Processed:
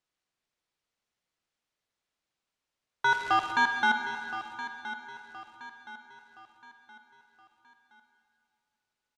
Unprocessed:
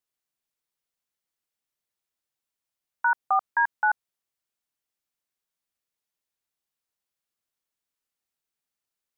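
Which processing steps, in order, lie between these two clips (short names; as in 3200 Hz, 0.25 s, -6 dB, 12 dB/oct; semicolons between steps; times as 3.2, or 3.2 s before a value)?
3.05–3.51 crackle 400/s -32 dBFS; soft clip -25 dBFS, distortion -10 dB; air absorption 83 m; feedback echo 1.02 s, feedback 41%, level -13 dB; reverb RT60 2.4 s, pre-delay 33 ms, DRR 6 dB; gain +5 dB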